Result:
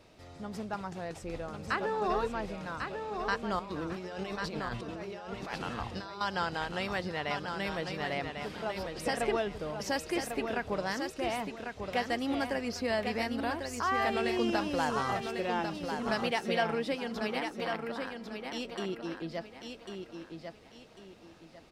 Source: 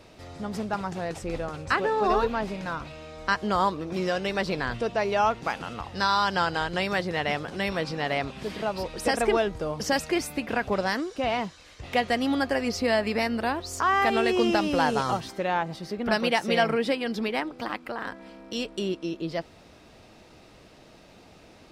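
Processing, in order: 3.59–6.21 negative-ratio compressor -33 dBFS, ratio -1; feedback echo 1.097 s, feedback 31%, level -6 dB; gain -7.5 dB

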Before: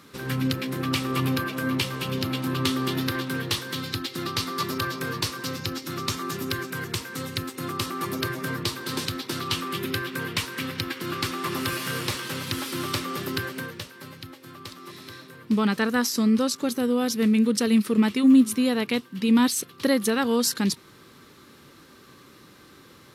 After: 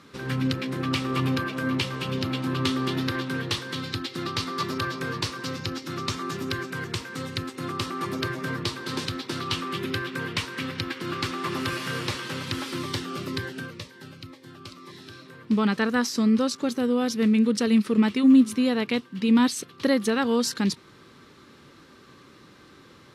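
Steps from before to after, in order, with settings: air absorption 54 m; 12.78–15.26 cascading phaser falling 2 Hz

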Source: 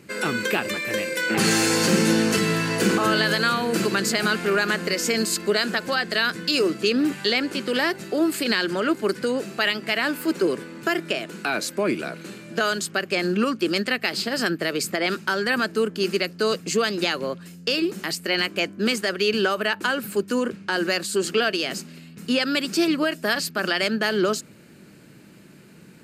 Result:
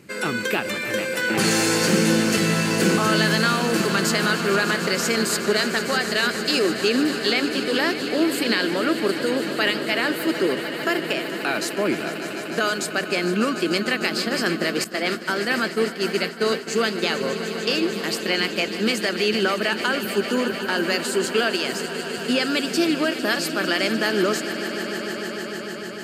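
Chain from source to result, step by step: swelling echo 0.15 s, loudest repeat 5, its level -14 dB; 14.84–17.1 expander -20 dBFS

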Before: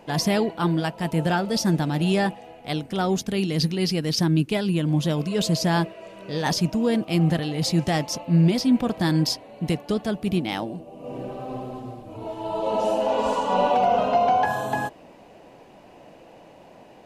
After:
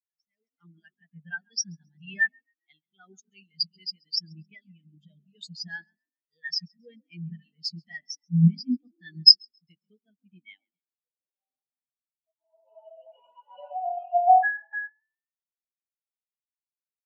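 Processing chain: passive tone stack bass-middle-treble 5-5-5; frequency-shifting echo 0.135 s, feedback 62%, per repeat +40 Hz, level -9.5 dB; AGC gain up to 15.5 dB; graphic EQ 125/250/1000/2000/8000 Hz -8/-5/-5/+5/+5 dB; on a send at -17.5 dB: reverb RT60 0.55 s, pre-delay 0.112 s; on the sum: spectral expander 4:1; gain -1 dB

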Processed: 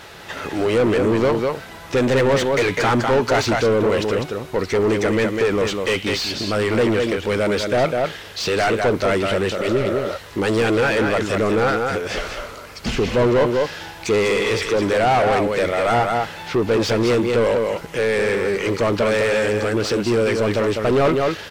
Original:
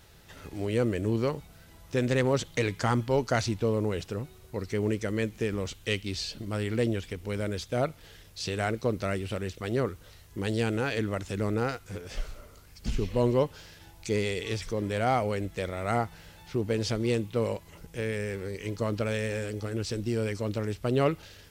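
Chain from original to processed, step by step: echo 0.2 s -8 dB; overdrive pedal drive 27 dB, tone 1900 Hz, clips at -11.5 dBFS; spectral repair 9.61–10.14, 410–1800 Hz before; gain +3 dB

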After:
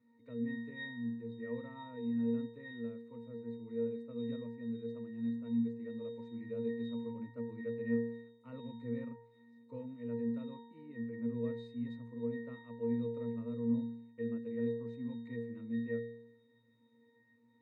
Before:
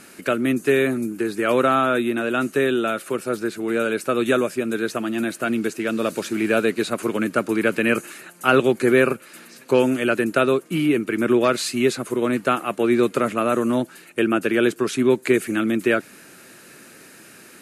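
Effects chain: octave resonator A#, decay 0.75 s; gain -2.5 dB

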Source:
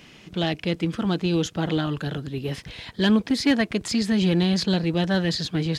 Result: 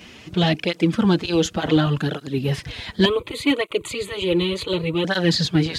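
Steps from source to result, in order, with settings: 3.05–5.05 fixed phaser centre 1100 Hz, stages 8; tape flanging out of phase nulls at 0.68 Hz, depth 7.8 ms; gain +8.5 dB

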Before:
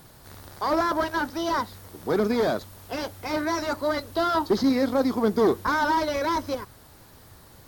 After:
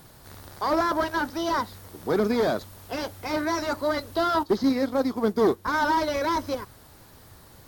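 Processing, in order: 4.43–5.74 upward expander 1.5:1, over -39 dBFS

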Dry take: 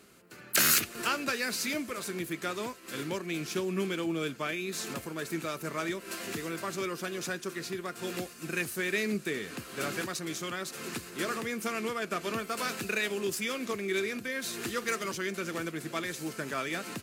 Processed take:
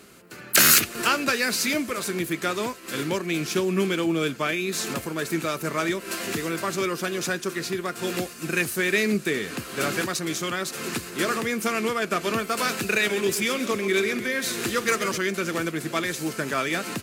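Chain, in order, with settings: 12.75–15.18 warbling echo 0.131 s, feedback 55%, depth 127 cents, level -12 dB; gain +8 dB

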